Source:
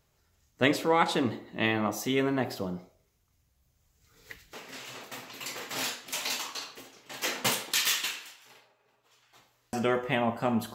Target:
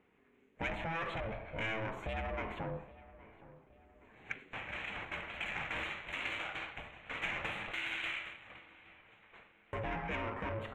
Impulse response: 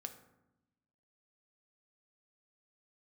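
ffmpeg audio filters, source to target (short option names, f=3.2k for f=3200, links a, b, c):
-filter_complex "[0:a]aeval=exprs='(tanh(44.7*val(0)+0.15)-tanh(0.15))/44.7':c=same,asuperstop=centerf=5000:order=8:qfactor=1.7,acompressor=threshold=-38dB:ratio=6,asplit=2[a][b];[b]adelay=819,lowpass=f=2.7k:p=1,volume=-18dB,asplit=2[c][d];[d]adelay=819,lowpass=f=2.7k:p=1,volume=0.47,asplit=2[e][f];[f]adelay=819,lowpass=f=2.7k:p=1,volume=0.47,asplit=2[g][h];[h]adelay=819,lowpass=f=2.7k:p=1,volume=0.47[i];[c][e][g][i]amix=inputs=4:normalize=0[j];[a][j]amix=inputs=2:normalize=0,aeval=exprs='val(0)*sin(2*PI*330*n/s)':c=same,equalizer=f=2.3k:t=o:w=1.1:g=14.5,adynamicsmooth=sensitivity=0.5:basefreq=1.6k,highshelf=f=6.2k:g=8,volume=4dB"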